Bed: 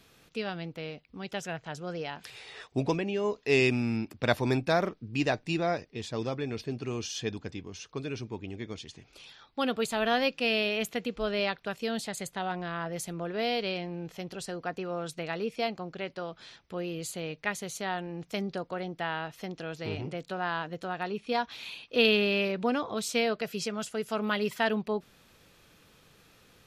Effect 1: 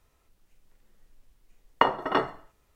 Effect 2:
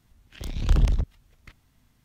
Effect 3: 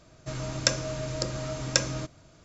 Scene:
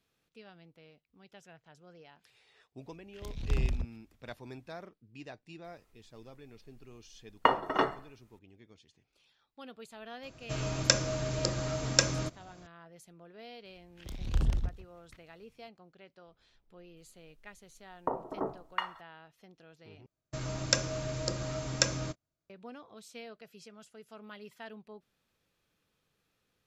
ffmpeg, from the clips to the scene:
-filter_complex "[2:a]asplit=2[a][b];[1:a]asplit=2[c][d];[3:a]asplit=2[e][f];[0:a]volume=-19dB[g];[b]aecho=1:1:160:0.133[h];[d]acrossover=split=990[i][j];[j]adelay=710[k];[i][k]amix=inputs=2:normalize=0[l];[f]agate=range=-31dB:threshold=-43dB:ratio=16:release=100:detection=peak[m];[g]asplit=2[n][o];[n]atrim=end=20.064[p];[m]atrim=end=2.44,asetpts=PTS-STARTPTS,volume=-3dB[q];[o]atrim=start=22.496[r];[a]atrim=end=2.04,asetpts=PTS-STARTPTS,volume=-9.5dB,afade=t=in:d=0.004:c=hsin,afade=t=out:st=2.036:d=0.004:c=hsin,adelay=2810[s];[c]atrim=end=2.75,asetpts=PTS-STARTPTS,volume=-3dB,afade=t=in:d=0.004:c=hsin,afade=t=out:st=2.746:d=0.004:c=hsin,adelay=5640[t];[e]atrim=end=2.44,asetpts=PTS-STARTPTS,volume=-0.5dB,afade=t=in:d=0.004:c=hsin,afade=t=out:st=2.436:d=0.004:c=hsin,adelay=10230[u];[h]atrim=end=2.04,asetpts=PTS-STARTPTS,volume=-8.5dB,afade=t=in:d=0.004:c=hsin,afade=t=out:st=2.036:d=0.004:c=hsin,adelay=13650[v];[l]atrim=end=2.75,asetpts=PTS-STARTPTS,volume=-7dB,afade=t=in:d=0.004:c=hsin,afade=t=out:st=2.746:d=0.004:c=hsin,adelay=16260[w];[p][q]acrossfade=d=0.004:c1=hsin:c2=hsin[x];[x][r]acrossfade=d=0.004:c1=hsin:c2=hsin[y];[y][s][t][u][v][w]amix=inputs=6:normalize=0"

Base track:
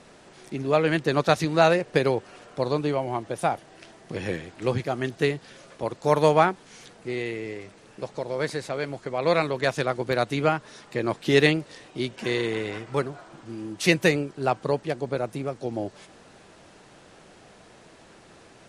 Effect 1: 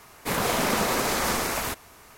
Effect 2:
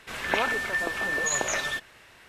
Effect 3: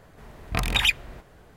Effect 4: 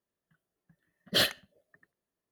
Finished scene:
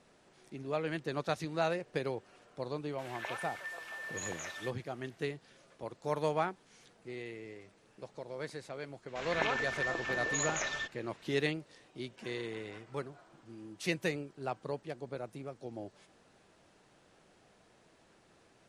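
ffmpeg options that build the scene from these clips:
-filter_complex "[2:a]asplit=2[a][b];[0:a]volume=-13.5dB[c];[a]highpass=f=500:w=0.5412,highpass=f=500:w=1.3066[d];[b]aresample=16000,aresample=44100[e];[d]atrim=end=2.28,asetpts=PTS-STARTPTS,volume=-15dB,afade=t=in:d=0.004:c=hsin,afade=t=out:st=2.276:d=0.004:c=hsin,adelay=2910[f];[e]atrim=end=2.28,asetpts=PTS-STARTPTS,volume=-7.5dB,afade=t=in:d=0.004:c=hsin,afade=t=out:st=2.276:d=0.004:c=hsin,adelay=9080[g];[c][f][g]amix=inputs=3:normalize=0"

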